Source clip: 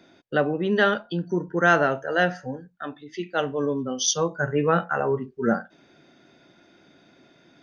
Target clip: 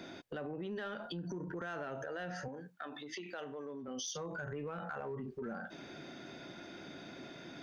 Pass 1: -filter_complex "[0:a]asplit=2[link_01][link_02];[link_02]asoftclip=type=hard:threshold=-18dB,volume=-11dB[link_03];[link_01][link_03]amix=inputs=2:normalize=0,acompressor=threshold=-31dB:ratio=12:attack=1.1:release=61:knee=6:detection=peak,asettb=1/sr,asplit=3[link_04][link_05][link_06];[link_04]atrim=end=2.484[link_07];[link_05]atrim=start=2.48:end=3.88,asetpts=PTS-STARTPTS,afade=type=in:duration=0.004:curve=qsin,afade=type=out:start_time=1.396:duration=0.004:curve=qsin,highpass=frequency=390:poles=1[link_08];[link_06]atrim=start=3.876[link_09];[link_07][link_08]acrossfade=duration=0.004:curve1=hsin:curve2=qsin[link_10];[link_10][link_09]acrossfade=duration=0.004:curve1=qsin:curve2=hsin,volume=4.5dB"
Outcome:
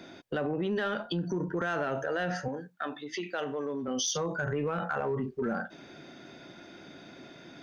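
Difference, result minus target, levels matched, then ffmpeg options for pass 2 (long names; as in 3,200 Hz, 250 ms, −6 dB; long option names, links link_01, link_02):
downward compressor: peak gain reduction −10.5 dB
-filter_complex "[0:a]asplit=2[link_01][link_02];[link_02]asoftclip=type=hard:threshold=-18dB,volume=-11dB[link_03];[link_01][link_03]amix=inputs=2:normalize=0,acompressor=threshold=-42.5dB:ratio=12:attack=1.1:release=61:knee=6:detection=peak,asettb=1/sr,asplit=3[link_04][link_05][link_06];[link_04]atrim=end=2.484[link_07];[link_05]atrim=start=2.48:end=3.88,asetpts=PTS-STARTPTS,afade=type=in:duration=0.004:curve=qsin,afade=type=out:start_time=1.396:duration=0.004:curve=qsin,highpass=frequency=390:poles=1[link_08];[link_06]atrim=start=3.876[link_09];[link_07][link_08]acrossfade=duration=0.004:curve1=hsin:curve2=qsin[link_10];[link_10][link_09]acrossfade=duration=0.004:curve1=qsin:curve2=hsin,volume=4.5dB"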